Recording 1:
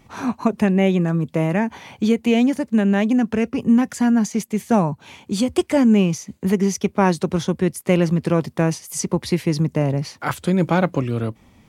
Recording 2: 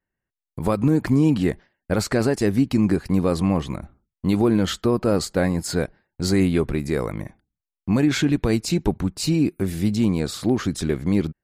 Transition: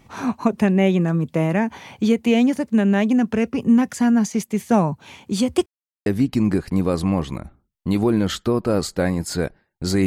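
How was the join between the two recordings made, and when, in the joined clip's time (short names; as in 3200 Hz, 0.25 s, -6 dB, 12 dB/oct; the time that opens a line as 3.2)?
recording 1
5.66–6.06 mute
6.06 switch to recording 2 from 2.44 s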